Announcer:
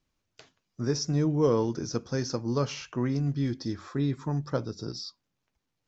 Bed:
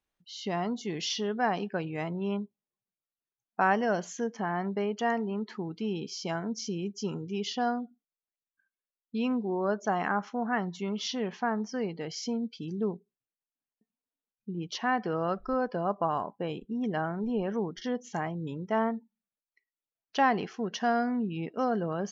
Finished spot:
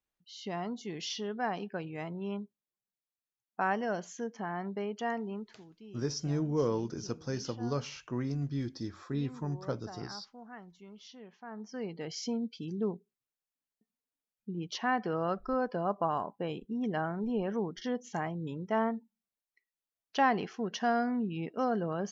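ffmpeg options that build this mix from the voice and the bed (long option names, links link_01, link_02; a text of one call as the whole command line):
ffmpeg -i stem1.wav -i stem2.wav -filter_complex "[0:a]adelay=5150,volume=-6dB[link_01];[1:a]volume=11dB,afade=type=out:start_time=5.34:duration=0.22:silence=0.223872,afade=type=in:start_time=11.44:duration=0.68:silence=0.149624[link_02];[link_01][link_02]amix=inputs=2:normalize=0" out.wav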